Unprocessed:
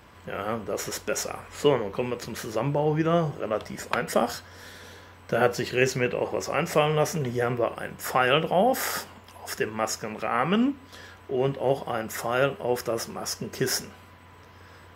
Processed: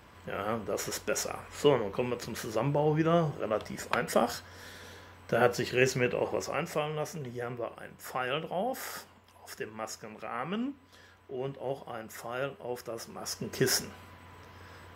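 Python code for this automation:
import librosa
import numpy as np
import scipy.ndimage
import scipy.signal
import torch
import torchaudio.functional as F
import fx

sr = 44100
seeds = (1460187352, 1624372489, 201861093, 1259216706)

y = fx.gain(x, sr, db=fx.line((6.34, -3.0), (6.87, -11.0), (12.96, -11.0), (13.59, -1.0)))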